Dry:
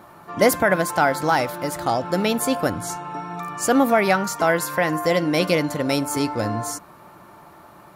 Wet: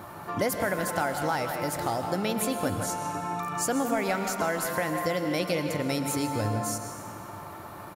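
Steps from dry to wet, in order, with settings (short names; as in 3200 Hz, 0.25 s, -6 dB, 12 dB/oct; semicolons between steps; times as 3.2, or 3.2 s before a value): high shelf 7800 Hz +4 dB; speakerphone echo 0.16 s, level -9 dB; compressor 2.5:1, threshold -35 dBFS, peak gain reduction 15.5 dB; bell 98 Hz +11 dB 0.34 oct; reverb RT60 2.1 s, pre-delay 0.104 s, DRR 8 dB; gain +3 dB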